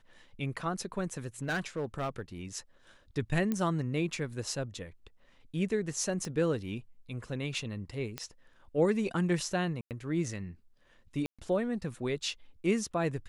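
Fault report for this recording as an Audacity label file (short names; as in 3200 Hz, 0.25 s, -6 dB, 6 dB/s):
1.190000	2.200000	clipped -28.5 dBFS
3.520000	3.520000	pop -19 dBFS
6.250000	6.250000	pop -25 dBFS
8.180000	8.180000	pop -19 dBFS
9.810000	9.910000	gap 98 ms
11.260000	11.390000	gap 0.126 s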